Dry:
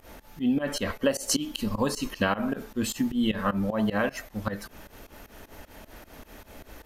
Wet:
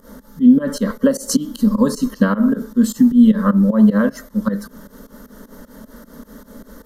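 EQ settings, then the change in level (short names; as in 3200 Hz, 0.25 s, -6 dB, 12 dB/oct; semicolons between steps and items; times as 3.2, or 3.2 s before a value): bell 240 Hz +11.5 dB 1.4 oct; fixed phaser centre 500 Hz, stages 8; +5.5 dB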